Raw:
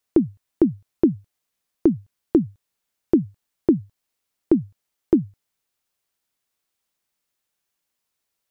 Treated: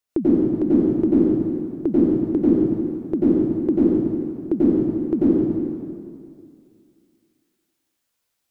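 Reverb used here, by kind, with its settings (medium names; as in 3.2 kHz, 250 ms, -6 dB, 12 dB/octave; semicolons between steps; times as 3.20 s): plate-style reverb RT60 2.3 s, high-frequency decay 0.85×, pre-delay 80 ms, DRR -9.5 dB; trim -6 dB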